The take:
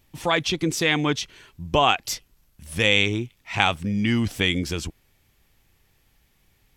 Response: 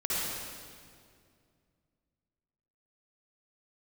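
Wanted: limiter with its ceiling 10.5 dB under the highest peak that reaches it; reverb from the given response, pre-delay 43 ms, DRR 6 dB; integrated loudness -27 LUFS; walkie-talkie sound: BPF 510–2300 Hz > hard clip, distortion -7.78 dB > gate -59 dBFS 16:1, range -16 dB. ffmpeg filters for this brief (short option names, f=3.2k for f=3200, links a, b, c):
-filter_complex "[0:a]alimiter=limit=-11.5dB:level=0:latency=1,asplit=2[a][b];[1:a]atrim=start_sample=2205,adelay=43[c];[b][c]afir=irnorm=-1:irlink=0,volume=-14.5dB[d];[a][d]amix=inputs=2:normalize=0,highpass=510,lowpass=2.3k,asoftclip=type=hard:threshold=-26dB,agate=range=-16dB:threshold=-59dB:ratio=16,volume=6dB"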